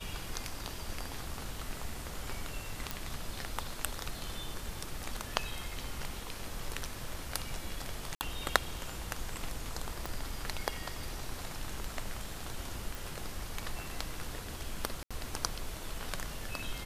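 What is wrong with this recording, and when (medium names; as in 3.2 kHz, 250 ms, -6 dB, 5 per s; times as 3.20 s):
2.91 s: pop
8.15–8.21 s: dropout 59 ms
10.06 s: pop
12.95 s: pop
15.03–15.11 s: dropout 76 ms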